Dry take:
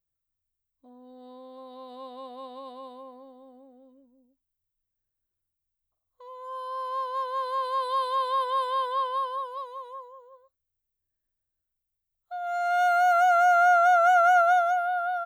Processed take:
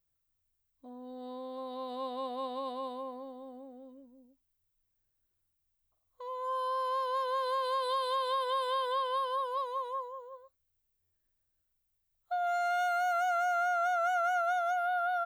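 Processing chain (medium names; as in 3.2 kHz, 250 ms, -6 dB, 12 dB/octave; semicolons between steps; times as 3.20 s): dynamic bell 920 Hz, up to -7 dB, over -36 dBFS, Q 1.4; compression 6:1, threshold -32 dBFS, peak gain reduction 11.5 dB; buffer glitch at 11.02 s, samples 512, times 9; trim +4 dB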